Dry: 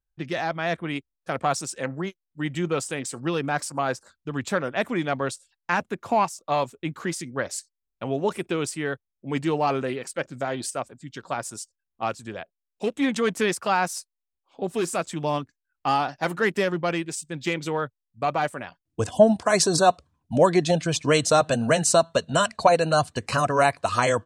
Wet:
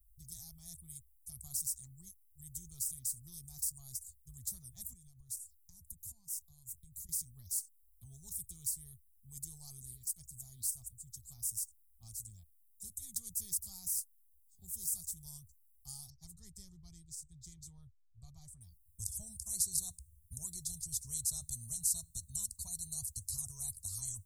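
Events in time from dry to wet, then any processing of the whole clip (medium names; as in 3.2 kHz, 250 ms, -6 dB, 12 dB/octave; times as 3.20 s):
4.93–7.09 s: compression 10:1, threshold -35 dBFS
16.10–18.61 s: distance through air 160 m
whole clip: inverse Chebyshev band-stop 270–2900 Hz, stop band 70 dB; spectrum-flattening compressor 2:1; trim +4.5 dB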